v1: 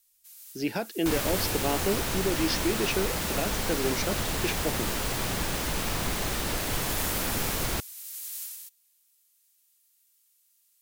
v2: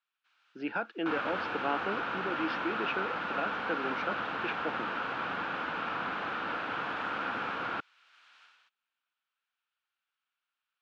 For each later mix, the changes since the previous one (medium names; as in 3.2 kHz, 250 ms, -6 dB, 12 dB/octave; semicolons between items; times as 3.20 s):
master: add cabinet simulation 340–2600 Hz, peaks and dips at 390 Hz -8 dB, 610 Hz -6 dB, 1.4 kHz +9 dB, 2 kHz -8 dB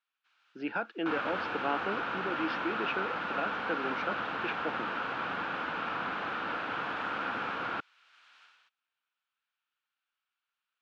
no change